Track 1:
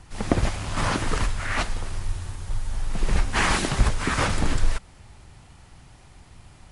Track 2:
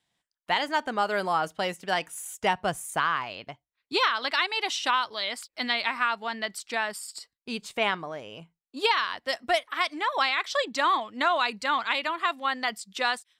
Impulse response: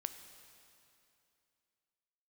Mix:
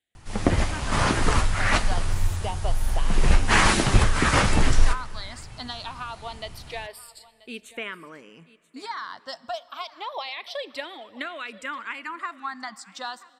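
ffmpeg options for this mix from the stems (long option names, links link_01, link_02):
-filter_complex "[0:a]flanger=delay=8.9:depth=7:regen=-46:speed=0.56:shape=sinusoidal,adelay=150,volume=0.5dB,asplit=2[link_01][link_02];[link_02]volume=-3.5dB[link_03];[1:a]acompressor=threshold=-25dB:ratio=6,asplit=2[link_04][link_05];[link_05]afreqshift=-0.27[link_06];[link_04][link_06]amix=inputs=2:normalize=1,volume=-8dB,asplit=3[link_07][link_08][link_09];[link_08]volume=-6dB[link_10];[link_09]volume=-17dB[link_11];[2:a]atrim=start_sample=2205[link_12];[link_03][link_10]amix=inputs=2:normalize=0[link_13];[link_13][link_12]afir=irnorm=-1:irlink=0[link_14];[link_11]aecho=0:1:983:1[link_15];[link_01][link_07][link_14][link_15]amix=inputs=4:normalize=0,dynaudnorm=framelen=270:gausssize=5:maxgain=4dB"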